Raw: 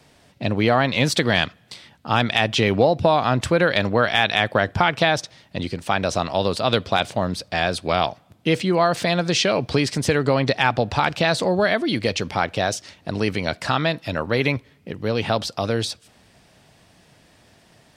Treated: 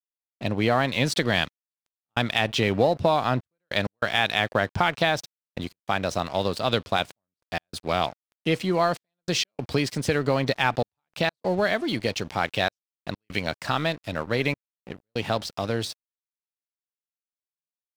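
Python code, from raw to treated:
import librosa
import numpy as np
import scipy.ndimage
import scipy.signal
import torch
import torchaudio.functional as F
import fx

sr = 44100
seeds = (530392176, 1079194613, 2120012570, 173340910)

y = fx.peak_eq(x, sr, hz=2700.0, db=7.5, octaves=1.5, at=(12.44, 13.39))
y = np.sign(y) * np.maximum(np.abs(y) - 10.0 ** (-37.5 / 20.0), 0.0)
y = fx.step_gate(y, sr, bpm=97, pattern='x.xxxxxxxx..', floor_db=-60.0, edge_ms=4.5)
y = y * librosa.db_to_amplitude(-3.5)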